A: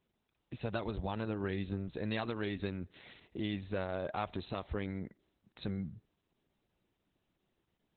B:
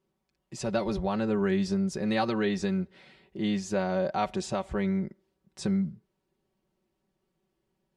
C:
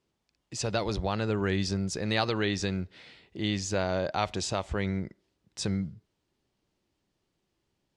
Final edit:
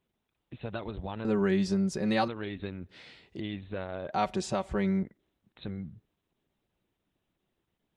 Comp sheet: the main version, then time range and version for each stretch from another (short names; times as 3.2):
A
1.25–2.28 from B
2.89–3.4 from C
4.13–5.03 from B